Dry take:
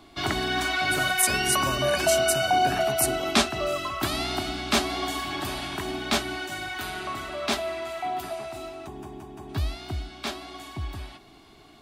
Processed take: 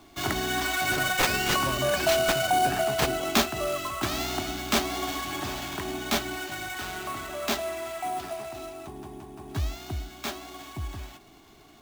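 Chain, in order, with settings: sample-rate reducer 10 kHz, jitter 20%; trim -1.5 dB

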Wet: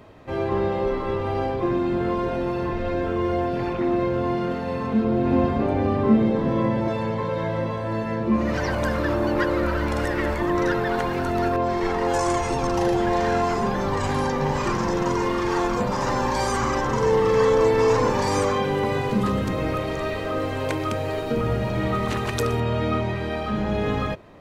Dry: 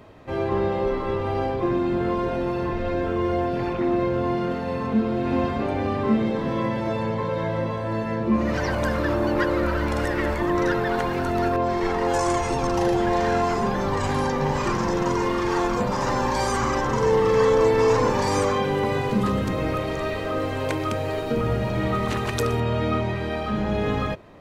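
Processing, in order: 5.04–6.88 s: tilt shelf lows +4 dB, about 1.1 kHz

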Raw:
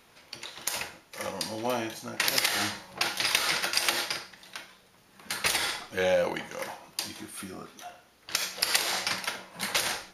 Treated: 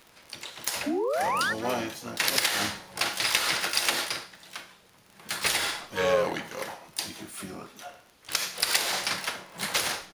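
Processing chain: painted sound rise, 0.86–1.53 s, 270–1900 Hz -28 dBFS; harmony voices -4 st -8 dB, +12 st -10 dB; crackle 28 per s -38 dBFS

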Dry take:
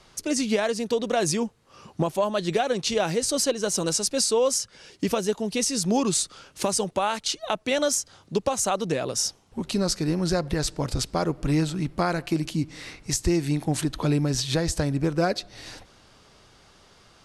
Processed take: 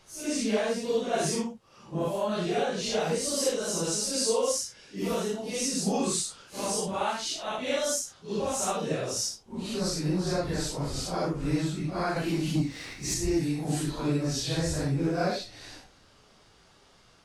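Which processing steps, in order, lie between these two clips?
phase randomisation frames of 200 ms; 12.16–13.14 s: waveshaping leveller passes 1; trim -4 dB

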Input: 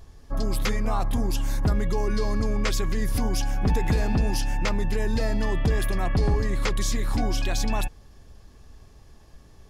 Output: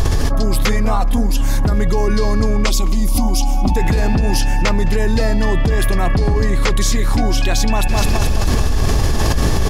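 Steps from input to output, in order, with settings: 0.96–1.41 s: comb 4.1 ms, depth 78%; 2.66–3.76 s: static phaser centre 450 Hz, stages 6; feedback delay 212 ms, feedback 55%, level -24 dB; level flattener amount 100%; trim +4.5 dB

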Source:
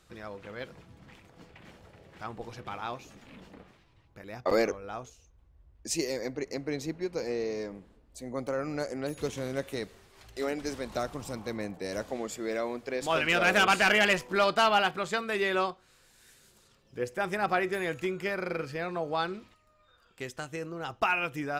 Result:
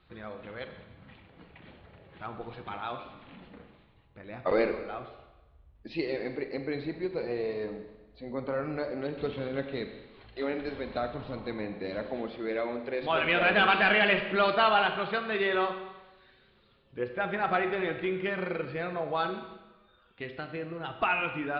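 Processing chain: coarse spectral quantiser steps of 15 dB; steep low-pass 4.2 kHz 72 dB/octave; Schroeder reverb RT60 1.1 s, combs from 29 ms, DRR 7 dB

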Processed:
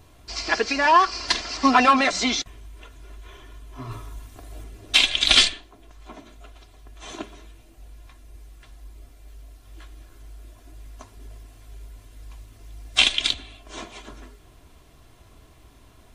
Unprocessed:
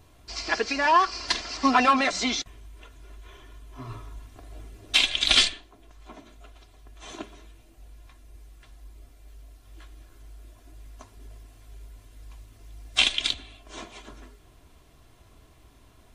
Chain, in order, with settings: 3.91–4.64 s: treble shelf 7.4 kHz +8 dB; trim +3.5 dB

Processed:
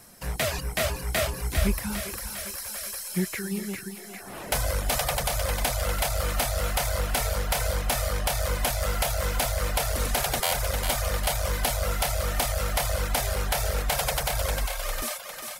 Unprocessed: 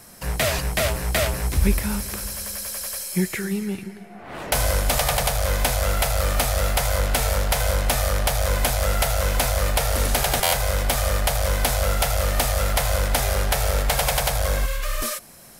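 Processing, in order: on a send: thinning echo 402 ms, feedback 65%, high-pass 420 Hz, level -5.5 dB; on the sum: reverb removal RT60 0.59 s; trim -4.5 dB

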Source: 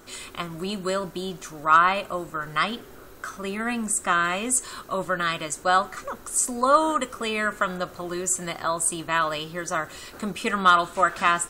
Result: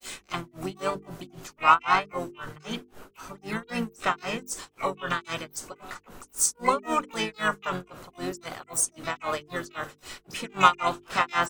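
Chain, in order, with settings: granulator 221 ms, grains 3.8 per s, pitch spread up and down by 0 st; harmony voices -5 st -6 dB, +12 st -11 dB; hum notches 50/100/150/200/250/300/350/400/450 Hz

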